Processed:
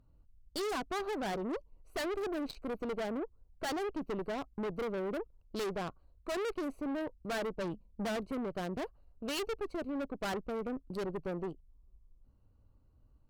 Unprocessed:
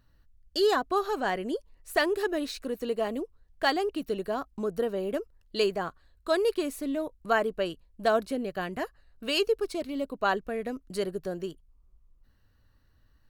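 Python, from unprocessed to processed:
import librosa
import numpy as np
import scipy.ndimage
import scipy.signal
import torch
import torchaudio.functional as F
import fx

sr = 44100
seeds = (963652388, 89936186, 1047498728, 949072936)

y = fx.wiener(x, sr, points=25)
y = fx.peak_eq(y, sr, hz=210.0, db=13.5, octaves=0.37, at=(7.61, 8.16))
y = fx.tube_stage(y, sr, drive_db=37.0, bias=0.65)
y = y * 10.0 ** (3.5 / 20.0)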